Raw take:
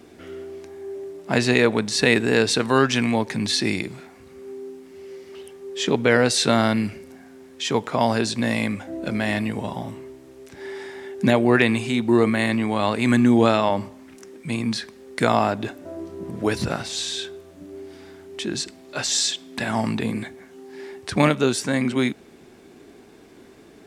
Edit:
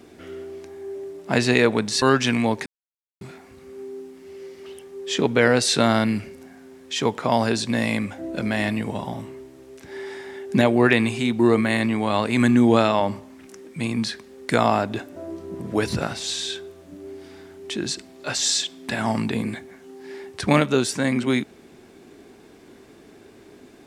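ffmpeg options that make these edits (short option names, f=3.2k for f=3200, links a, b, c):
-filter_complex "[0:a]asplit=4[a][b][c][d];[a]atrim=end=2.022[e];[b]atrim=start=2.708:end=3.35,asetpts=PTS-STARTPTS,afade=t=out:st=0.638:d=0.004:c=hsin[f];[c]atrim=start=3.35:end=3.9,asetpts=PTS-STARTPTS,volume=0[g];[d]atrim=start=3.9,asetpts=PTS-STARTPTS,afade=t=in:d=0.004:c=hsin[h];[f][g][h]concat=n=3:v=0:a=1[i];[e][i]acrossfade=d=0.004:c1=hsin:c2=hsin"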